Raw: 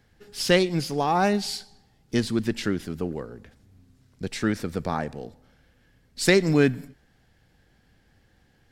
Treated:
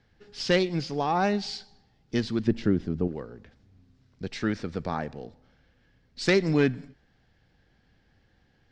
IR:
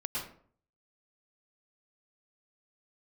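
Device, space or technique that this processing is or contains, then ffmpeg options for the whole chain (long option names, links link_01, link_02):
synthesiser wavefolder: -filter_complex "[0:a]aeval=exprs='0.335*(abs(mod(val(0)/0.335+3,4)-2)-1)':channel_layout=same,lowpass=frequency=5800:width=0.5412,lowpass=frequency=5800:width=1.3066,asettb=1/sr,asplit=3[link_01][link_02][link_03];[link_01]atrim=end=2.474[link_04];[link_02]atrim=start=2.47:end=3.08,asetpts=PTS-STARTPTS,afade=type=in:duration=0.004:curve=qsin,afade=type=out:start_time=0.606:duration=0.004:curve=qsin,tiltshelf=frequency=780:gain=7.5[link_05];[link_03]atrim=start=3.076[link_06];[link_04][link_05]acrossfade=duration=0.004:curve1=hsin:curve2=qsin[link_07];[link_07][link_06]acrossfade=duration=0.004:curve1=qsin:curve2=hsin,volume=-3dB"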